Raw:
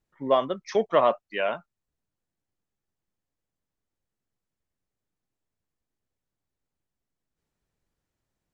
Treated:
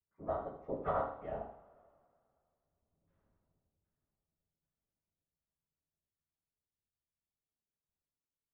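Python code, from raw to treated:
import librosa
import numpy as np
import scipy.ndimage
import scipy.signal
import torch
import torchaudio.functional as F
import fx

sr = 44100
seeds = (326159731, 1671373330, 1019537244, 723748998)

p1 = np.where(x < 0.0, 10.0 ** (-7.0 / 20.0) * x, x)
p2 = fx.doppler_pass(p1, sr, speed_mps=29, closest_m=4.3, pass_at_s=3.23)
p3 = fx.whisperise(p2, sr, seeds[0])
p4 = fx.filter_lfo_lowpass(p3, sr, shape='saw_down', hz=1.3, low_hz=500.0, high_hz=1600.0, q=1.1)
p5 = p4 + fx.echo_feedback(p4, sr, ms=80, feedback_pct=30, wet_db=-10.5, dry=0)
p6 = fx.rev_double_slope(p5, sr, seeds[1], early_s=0.38, late_s=2.4, knee_db=-22, drr_db=0.0)
y = p6 * librosa.db_to_amplitude(9.0)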